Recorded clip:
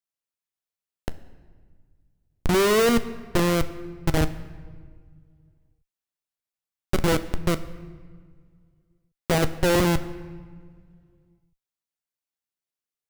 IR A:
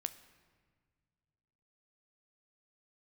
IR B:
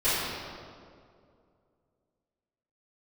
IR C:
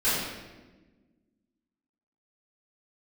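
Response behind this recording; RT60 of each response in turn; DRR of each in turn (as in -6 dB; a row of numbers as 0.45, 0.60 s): A; 1.7, 2.3, 1.3 s; 11.0, -17.0, -16.5 dB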